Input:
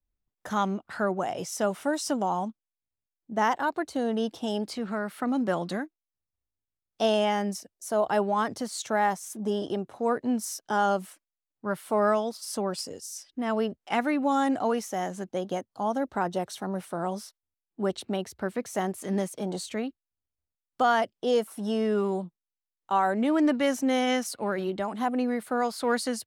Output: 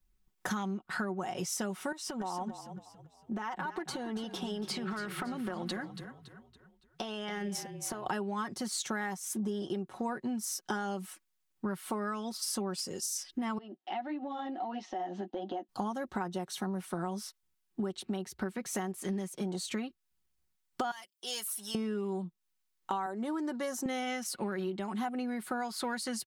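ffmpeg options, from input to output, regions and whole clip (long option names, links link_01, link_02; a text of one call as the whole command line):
ffmpeg -i in.wav -filter_complex "[0:a]asettb=1/sr,asplit=3[link_01][link_02][link_03];[link_01]atrim=end=1.924[link_04];[link_02]atrim=start=1.92:end=8.06,asetpts=PTS-STARTPTS,afade=type=in:duration=0.004:curve=qsin,afade=type=out:start_time=6.136:duration=0.004:curve=qsin,bass=frequency=250:gain=-8,treble=frequency=4000:gain=-7,acompressor=threshold=-38dB:ratio=12:attack=3.2:release=140:knee=1:detection=peak,asplit=5[link_05][link_06][link_07][link_08][link_09];[link_06]adelay=281,afreqshift=-36,volume=-11.5dB[link_10];[link_07]adelay=562,afreqshift=-72,volume=-19dB[link_11];[link_08]adelay=843,afreqshift=-108,volume=-26.6dB[link_12];[link_09]adelay=1124,afreqshift=-144,volume=-34.1dB[link_13];[link_05][link_10][link_11][link_12][link_13]amix=inputs=5:normalize=0,atrim=end_sample=270774[link_14];[link_03]atrim=start=8.056[link_15];[link_04][link_14]acrossfade=duration=0.004:curve1=hsin:curve2=qsin[link_16];[link_16][link_15]acrossfade=duration=0.004:curve1=qsin:curve2=hsin,asettb=1/sr,asplit=3[link_17][link_18][link_19];[link_17]atrim=end=13.584[link_20];[link_18]atrim=start=13.58:end=15.69,asetpts=PTS-STARTPTS,afade=type=in:duration=0.004:curve=qsin,afade=type=out:start_time=2.106:duration=0.004:curve=qsin,flanger=delay=6.1:depth=5.4:regen=-25:speed=1.6:shape=triangular,highpass=frequency=260:width=0.5412,highpass=frequency=260:width=1.3066,equalizer=frequency=310:width_type=q:width=4:gain=8,equalizer=frequency=440:width_type=q:width=4:gain=-9,equalizer=frequency=730:width_type=q:width=4:gain=8,equalizer=frequency=1100:width_type=q:width=4:gain=-8,equalizer=frequency=1500:width_type=q:width=4:gain=-8,equalizer=frequency=2300:width_type=q:width=4:gain=-10,lowpass=frequency=3600:width=0.5412,lowpass=frequency=3600:width=1.3066,acompressor=threshold=-42dB:ratio=3:attack=3.2:release=140:knee=1:detection=peak[link_21];[link_19]atrim=start=15.686[link_22];[link_20][link_21]acrossfade=duration=0.004:curve1=hsin:curve2=qsin[link_23];[link_23][link_22]acrossfade=duration=0.004:curve1=qsin:curve2=hsin,asettb=1/sr,asplit=3[link_24][link_25][link_26];[link_24]atrim=end=20.914[link_27];[link_25]atrim=start=20.91:end=21.75,asetpts=PTS-STARTPTS,afade=type=in:duration=0.004:curve=qsin,afade=type=out:start_time=0.836:duration=0.004:curve=qsin,aderivative,volume=30dB,asoftclip=hard,volume=-30dB[link_28];[link_26]atrim=start=21.746[link_29];[link_27][link_28]acrossfade=duration=0.004:curve1=hsin:curve2=qsin[link_30];[link_30][link_29]acrossfade=duration=0.004:curve1=qsin:curve2=hsin,asettb=1/sr,asplit=3[link_31][link_32][link_33];[link_31]atrim=end=23.064[link_34];[link_32]atrim=start=23.06:end=23.86,asetpts=PTS-STARTPTS,afade=type=in:duration=0.004:curve=qsin,afade=type=out:start_time=0.796:duration=0.004:curve=qsin,highpass=280,equalizer=frequency=2500:width_type=o:width=0.87:gain=-13[link_35];[link_33]atrim=start=23.856[link_36];[link_34][link_35]acrossfade=duration=0.004:curve1=hsin:curve2=qsin[link_37];[link_37][link_36]acrossfade=duration=0.004:curve1=qsin:curve2=hsin,equalizer=frequency=590:width=2.8:gain=-9,aecho=1:1:5.4:0.57,acompressor=threshold=-40dB:ratio=12,volume=8dB" out.wav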